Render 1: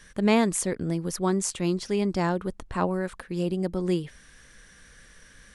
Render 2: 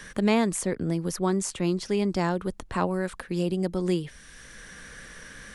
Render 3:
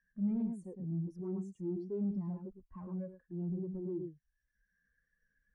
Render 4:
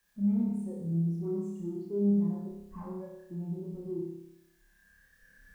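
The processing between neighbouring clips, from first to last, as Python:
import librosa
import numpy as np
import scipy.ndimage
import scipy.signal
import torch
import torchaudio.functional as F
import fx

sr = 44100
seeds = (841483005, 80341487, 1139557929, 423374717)

y1 = fx.band_squash(x, sr, depth_pct=40)
y2 = y1 + 10.0 ** (-5.5 / 20.0) * np.pad(y1, (int(109 * sr / 1000.0), 0))[:len(y1)]
y2 = fx.tube_stage(y2, sr, drive_db=30.0, bias=0.35)
y2 = fx.spectral_expand(y2, sr, expansion=2.5)
y3 = fx.recorder_agc(y2, sr, target_db=-35.0, rise_db_per_s=12.0, max_gain_db=30)
y3 = fx.dmg_noise_colour(y3, sr, seeds[0], colour='white', level_db=-78.0)
y3 = fx.room_flutter(y3, sr, wall_m=5.1, rt60_s=0.86)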